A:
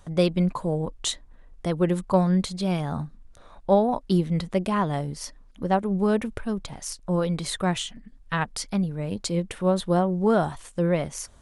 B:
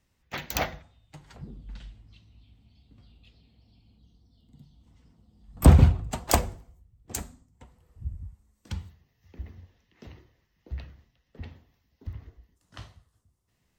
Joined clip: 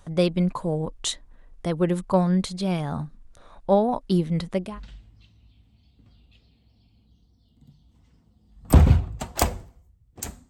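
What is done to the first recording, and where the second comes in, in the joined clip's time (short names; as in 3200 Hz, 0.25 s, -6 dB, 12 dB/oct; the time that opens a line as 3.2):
A
4.66 switch to B from 1.58 s, crossfade 0.28 s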